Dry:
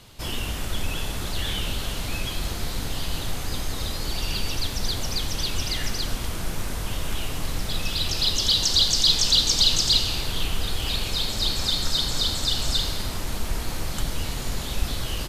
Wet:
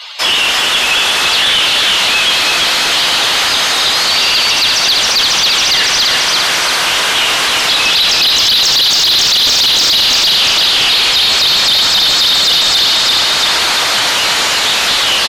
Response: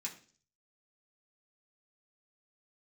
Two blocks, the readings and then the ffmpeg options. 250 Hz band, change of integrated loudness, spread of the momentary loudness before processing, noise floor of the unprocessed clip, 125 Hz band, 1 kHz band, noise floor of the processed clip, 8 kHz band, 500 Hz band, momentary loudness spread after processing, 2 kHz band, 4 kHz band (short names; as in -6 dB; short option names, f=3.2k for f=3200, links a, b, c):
+5.5 dB, +16.5 dB, 13 LU, -31 dBFS, -4.5 dB, +20.0 dB, -13 dBFS, +14.5 dB, +13.5 dB, 3 LU, +23.0 dB, +17.0 dB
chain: -filter_complex "[0:a]acrossover=split=6600[a][b];[b]acompressor=threshold=-44dB:ratio=4:attack=1:release=60[c];[a][c]amix=inputs=2:normalize=0,highpass=f=1.3k:p=1,highshelf=f=3.1k:g=3.5,asplit=2[d][e];[e]aecho=0:1:341|682|1023|1364|1705|2046|2387:0.596|0.31|0.161|0.0838|0.0436|0.0226|0.0118[f];[d][f]amix=inputs=2:normalize=0,asplit=2[g][h];[h]highpass=f=720:p=1,volume=28dB,asoftclip=type=tanh:threshold=-5dB[i];[g][i]amix=inputs=2:normalize=0,lowpass=f=2.9k:p=1,volume=-6dB,afftdn=nr=21:nf=-38,alimiter=level_in=12dB:limit=-1dB:release=50:level=0:latency=1,volume=-4dB"